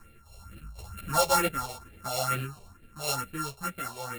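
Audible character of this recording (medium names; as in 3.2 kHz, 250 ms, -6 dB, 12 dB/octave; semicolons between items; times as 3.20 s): a buzz of ramps at a fixed pitch in blocks of 32 samples; phasing stages 4, 2.2 Hz, lowest notch 260–1000 Hz; tremolo saw down 3.9 Hz, depth 40%; a shimmering, thickened sound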